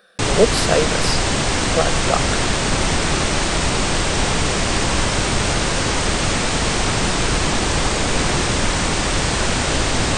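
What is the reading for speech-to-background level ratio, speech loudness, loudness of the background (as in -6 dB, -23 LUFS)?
-3.5 dB, -22.0 LUFS, -18.5 LUFS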